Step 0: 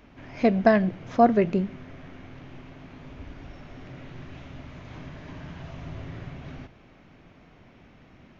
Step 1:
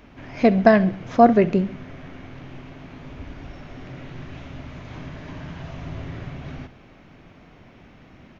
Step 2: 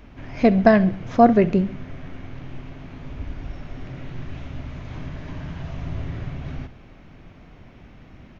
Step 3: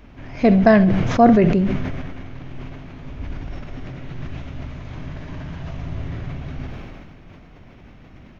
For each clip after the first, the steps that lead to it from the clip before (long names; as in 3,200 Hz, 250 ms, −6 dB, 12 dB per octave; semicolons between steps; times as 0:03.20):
repeating echo 68 ms, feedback 46%, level −19 dB; level +4.5 dB
low-shelf EQ 100 Hz +10.5 dB; level −1 dB
level that may fall only so fast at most 27 dB per second